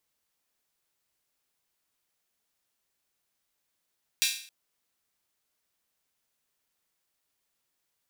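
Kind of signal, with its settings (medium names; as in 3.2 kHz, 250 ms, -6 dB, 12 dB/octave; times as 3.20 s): open hi-hat length 0.27 s, high-pass 2.9 kHz, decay 0.50 s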